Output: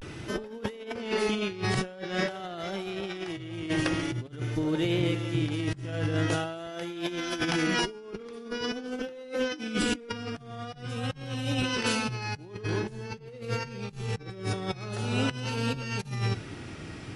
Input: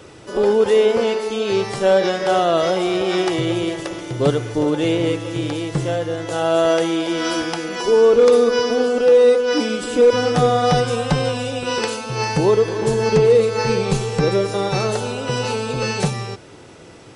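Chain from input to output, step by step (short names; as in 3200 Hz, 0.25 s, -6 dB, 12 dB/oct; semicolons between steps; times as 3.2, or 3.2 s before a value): graphic EQ 500/1000/4000/8000 Hz -11/-7/-4/-10 dB; on a send at -17 dB: reverb, pre-delay 3 ms; on the sum: vibrato 0.46 Hz 78 cents; 4.42–5.46 resonator 75 Hz, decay 1.5 s, harmonics all, mix 60%; negative-ratio compressor -31 dBFS, ratio -0.5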